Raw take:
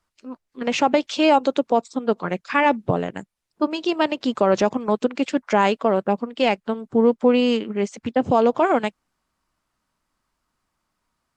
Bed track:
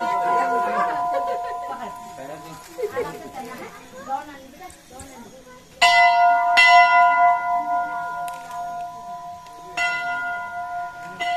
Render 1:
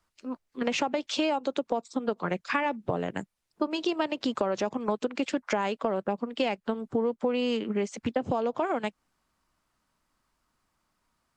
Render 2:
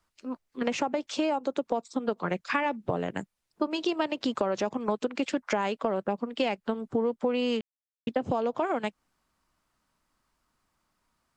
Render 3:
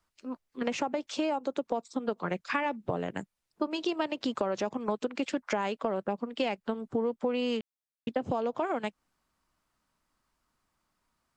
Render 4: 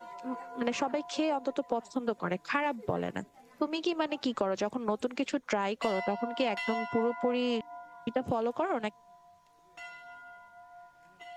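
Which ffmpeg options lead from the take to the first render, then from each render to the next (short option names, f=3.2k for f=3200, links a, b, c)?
-filter_complex "[0:a]acrossover=split=350[a][b];[a]alimiter=limit=-20.5dB:level=0:latency=1[c];[c][b]amix=inputs=2:normalize=0,acompressor=threshold=-24dB:ratio=10"
-filter_complex "[0:a]asettb=1/sr,asplit=3[a][b][c];[a]atrim=end=0.704[d];[b]atrim=start=0.7:end=1.59,asetpts=PTS-STARTPTS,afade=t=in:d=0.004:c=qsin,afade=t=out:st=0.886:d=0.004:c=qsin,equalizer=f=3.4k:t=o:w=1.4:g=-6[e];[c]atrim=start=1.586[f];[d][e]acrossfade=d=0.004:c1=hsin:c2=qsin[g];[g][f]acrossfade=d=0.004:c1=qsin:c2=hsin,asplit=3[h][i][j];[h]atrim=end=7.61,asetpts=PTS-STARTPTS,afade=t=out:st=7.606:d=0.004:c=hsin[k];[i]atrim=start=7.61:end=8.07,asetpts=PTS-STARTPTS,volume=0[l];[j]atrim=start=8.07,asetpts=PTS-STARTPTS,afade=t=in:d=0.004:c=hsin[m];[k][l][m]concat=n=3:v=0:a=1"
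-af "volume=-2.5dB"
-filter_complex "[1:a]volume=-23.5dB[a];[0:a][a]amix=inputs=2:normalize=0"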